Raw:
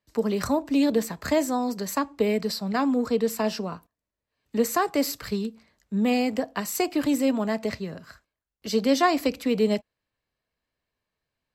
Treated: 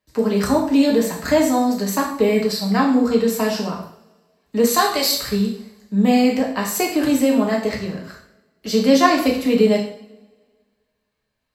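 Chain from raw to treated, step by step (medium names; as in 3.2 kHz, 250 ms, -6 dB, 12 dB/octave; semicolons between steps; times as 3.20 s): 4.67–5.20 s: fifteen-band graphic EQ 250 Hz -12 dB, 4 kHz +12 dB, 10 kHz +4 dB; two-slope reverb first 0.57 s, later 1.8 s, from -23 dB, DRR -1.5 dB; trim +3 dB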